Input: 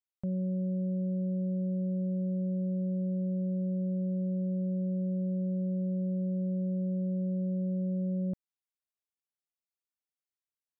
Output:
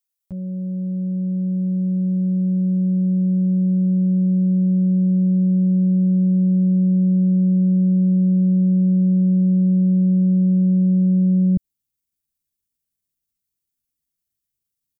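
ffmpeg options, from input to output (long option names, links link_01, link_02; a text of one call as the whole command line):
ffmpeg -i in.wav -af "atempo=0.72,asubboost=boost=10:cutoff=250,crystalizer=i=3:c=0" out.wav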